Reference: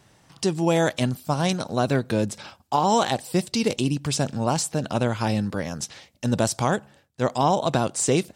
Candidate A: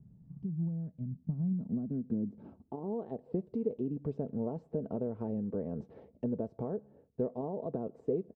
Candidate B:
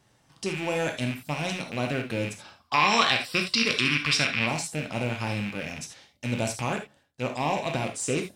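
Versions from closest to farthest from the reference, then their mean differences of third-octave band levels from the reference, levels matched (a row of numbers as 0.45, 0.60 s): B, A; 5.5, 15.5 dB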